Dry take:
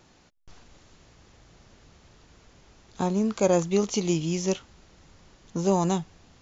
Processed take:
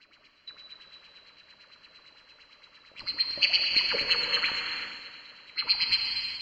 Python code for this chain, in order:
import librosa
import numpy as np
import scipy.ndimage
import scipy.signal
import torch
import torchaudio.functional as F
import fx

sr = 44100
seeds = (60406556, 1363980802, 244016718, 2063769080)

p1 = fx.band_swap(x, sr, width_hz=4000)
p2 = fx.peak_eq(p1, sr, hz=740.0, db=-13.0, octaves=0.46)
p3 = fx.filter_lfo_lowpass(p2, sr, shape='sine', hz=8.8, low_hz=580.0, high_hz=3100.0, q=6.2)
p4 = p3 + fx.echo_feedback(p3, sr, ms=237, feedback_pct=51, wet_db=-11.5, dry=0)
y = fx.rev_gated(p4, sr, seeds[0], gate_ms=450, shape='flat', drr_db=1.5)